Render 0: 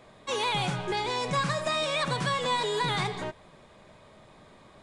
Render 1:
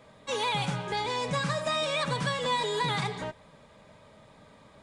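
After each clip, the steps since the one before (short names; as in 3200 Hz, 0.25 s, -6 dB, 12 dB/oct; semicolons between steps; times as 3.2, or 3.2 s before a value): notch comb 360 Hz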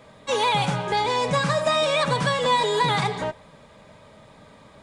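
dynamic EQ 700 Hz, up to +4 dB, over -42 dBFS, Q 0.9; gain +5.5 dB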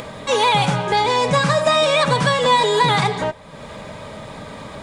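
upward compressor, threshold -29 dBFS; gain +5.5 dB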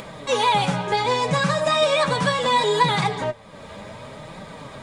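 flange 0.68 Hz, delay 5.1 ms, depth 6.1 ms, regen +40%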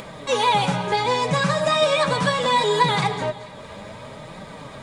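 split-band echo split 1100 Hz, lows 0.154 s, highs 0.219 s, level -16 dB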